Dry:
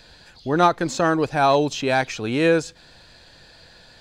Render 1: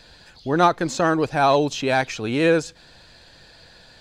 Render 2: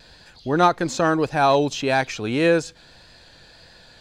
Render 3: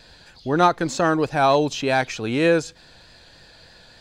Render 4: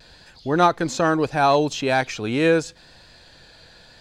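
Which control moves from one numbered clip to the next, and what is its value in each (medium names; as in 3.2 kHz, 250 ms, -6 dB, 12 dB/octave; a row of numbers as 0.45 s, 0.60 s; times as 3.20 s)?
vibrato, rate: 15 Hz, 1.7 Hz, 3.3 Hz, 0.77 Hz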